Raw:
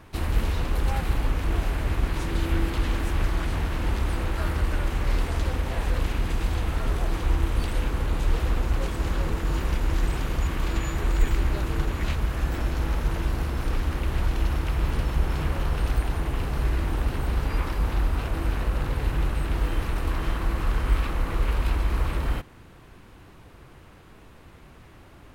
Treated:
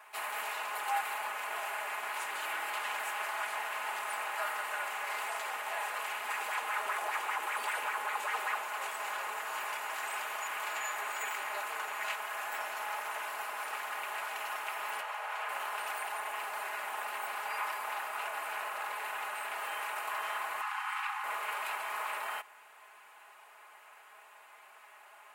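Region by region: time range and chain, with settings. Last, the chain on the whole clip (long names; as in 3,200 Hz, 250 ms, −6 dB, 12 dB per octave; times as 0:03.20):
0:06.25–0:08.57: notch filter 670 Hz, Q 16 + auto-filter bell 5.1 Hz 260–2,200 Hz +9 dB
0:15.01–0:15.49: linear-phase brick-wall high-pass 420 Hz + high-shelf EQ 6,300 Hz −10.5 dB
0:20.61–0:21.24: linear-phase brick-wall high-pass 730 Hz + high-shelf EQ 8,200 Hz −10 dB
whole clip: Chebyshev high-pass filter 770 Hz, order 3; flat-topped bell 4,500 Hz −8 dB 1.1 octaves; comb filter 4.8 ms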